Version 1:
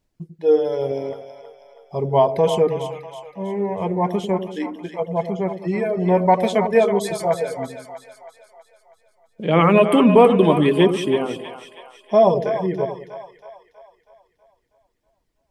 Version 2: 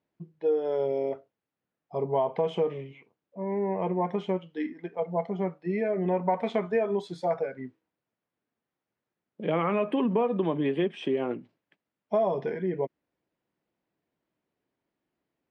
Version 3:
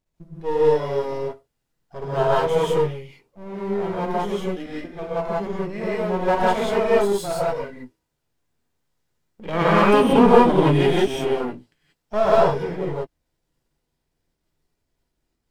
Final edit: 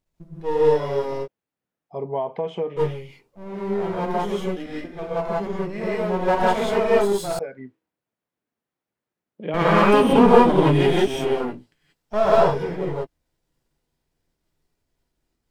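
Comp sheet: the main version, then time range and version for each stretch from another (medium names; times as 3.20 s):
3
1.25–2.79 s: from 2, crossfade 0.06 s
7.39–9.54 s: from 2
not used: 1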